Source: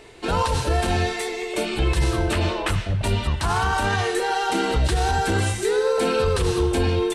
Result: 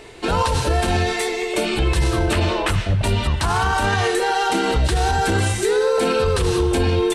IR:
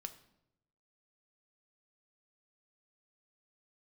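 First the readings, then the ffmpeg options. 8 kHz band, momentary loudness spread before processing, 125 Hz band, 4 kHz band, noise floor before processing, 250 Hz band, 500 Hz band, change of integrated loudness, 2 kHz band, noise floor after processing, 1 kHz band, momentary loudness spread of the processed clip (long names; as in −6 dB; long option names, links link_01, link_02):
+3.5 dB, 4 LU, +2.5 dB, +3.5 dB, −30 dBFS, +3.0 dB, +3.0 dB, +3.0 dB, +3.0 dB, −25 dBFS, +3.0 dB, 3 LU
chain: -af "alimiter=limit=-15.5dB:level=0:latency=1,volume=5dB"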